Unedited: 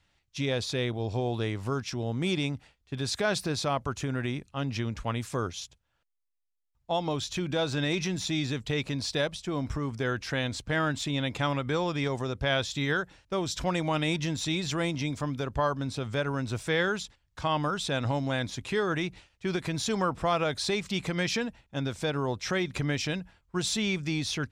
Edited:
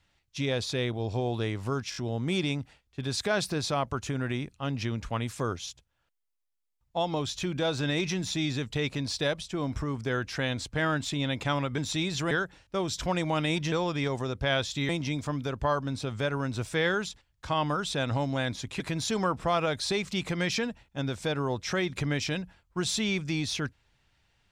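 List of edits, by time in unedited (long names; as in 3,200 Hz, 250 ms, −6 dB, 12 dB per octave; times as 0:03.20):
0:01.90: stutter 0.02 s, 4 plays
0:11.72–0:12.89: swap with 0:14.30–0:14.83
0:18.74–0:19.58: remove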